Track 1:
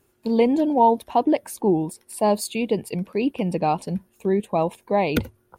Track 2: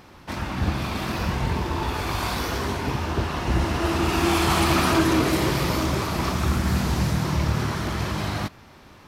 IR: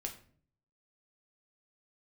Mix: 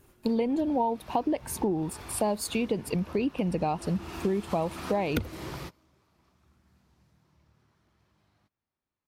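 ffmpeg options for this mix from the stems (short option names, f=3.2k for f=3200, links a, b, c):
-filter_complex "[0:a]lowshelf=f=76:g=11,volume=2.5dB,asplit=2[a][b];[1:a]volume=-16dB[c];[b]apad=whole_len=404771[d];[c][d]sidechaingate=range=-27dB:threshold=-60dB:ratio=16:detection=peak[e];[a][e]amix=inputs=2:normalize=0,acompressor=threshold=-25dB:ratio=6"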